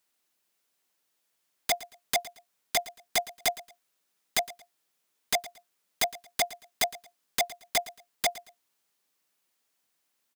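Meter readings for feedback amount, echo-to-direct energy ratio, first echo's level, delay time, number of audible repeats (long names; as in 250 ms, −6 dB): 26%, −17.5 dB, −18.0 dB, 113 ms, 2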